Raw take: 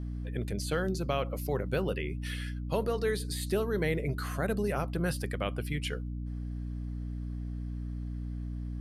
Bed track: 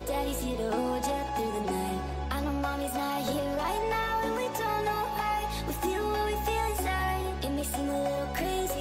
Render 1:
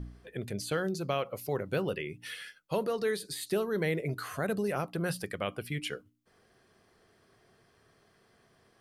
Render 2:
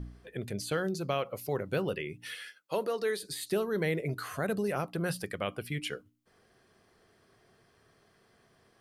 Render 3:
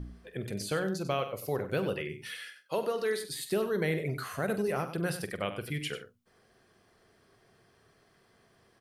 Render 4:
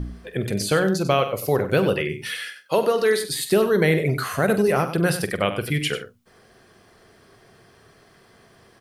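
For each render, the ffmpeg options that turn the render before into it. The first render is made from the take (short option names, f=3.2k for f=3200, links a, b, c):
-af "bandreject=f=60:t=h:w=4,bandreject=f=120:t=h:w=4,bandreject=f=180:t=h:w=4,bandreject=f=240:t=h:w=4,bandreject=f=300:t=h:w=4"
-filter_complex "[0:a]asettb=1/sr,asplit=3[a][b][c];[a]atrim=end=2.354[d];[b]atrim=start=2.35:end=3.23,asetpts=PTS-STARTPTS,afade=t=in:d=0.004:c=qsin,afade=t=out:st=0.876:d=0.004:c=qsin,highpass=270[e];[c]atrim=start=3.226[f];[d][e]acrossfade=d=0.004:c1=hsin:c2=qsin[g];[g][f]acrossfade=d=0.004:c1=qsin:c2=hsin"
-filter_complex "[0:a]asplit=2[a][b];[b]adelay=46,volume=-13dB[c];[a][c]amix=inputs=2:normalize=0,aecho=1:1:95:0.282"
-af "volume=11.5dB"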